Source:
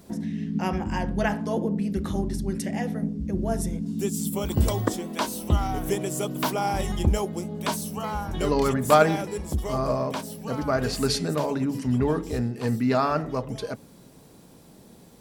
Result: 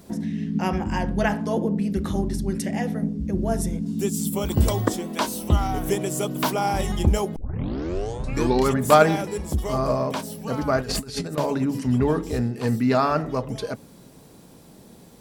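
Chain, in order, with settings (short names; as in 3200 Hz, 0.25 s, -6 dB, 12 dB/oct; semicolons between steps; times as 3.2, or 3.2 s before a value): 7.36 tape start 1.32 s; 10.8–11.38 negative-ratio compressor -31 dBFS, ratio -0.5; gain +2.5 dB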